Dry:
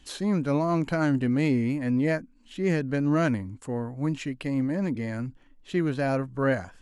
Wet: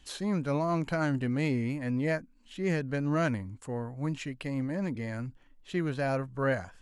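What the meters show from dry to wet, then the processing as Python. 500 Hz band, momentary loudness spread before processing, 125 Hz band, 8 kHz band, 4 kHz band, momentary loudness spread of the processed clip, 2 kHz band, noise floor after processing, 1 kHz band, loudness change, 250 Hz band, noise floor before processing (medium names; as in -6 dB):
-4.0 dB, 9 LU, -3.5 dB, -2.5 dB, -2.5 dB, 8 LU, -2.5 dB, -60 dBFS, -3.0 dB, -4.5 dB, -6.0 dB, -57 dBFS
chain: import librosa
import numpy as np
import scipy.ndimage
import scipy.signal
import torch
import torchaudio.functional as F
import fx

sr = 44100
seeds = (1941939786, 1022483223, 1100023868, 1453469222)

y = fx.peak_eq(x, sr, hz=280.0, db=-4.5, octaves=1.0)
y = F.gain(torch.from_numpy(y), -2.5).numpy()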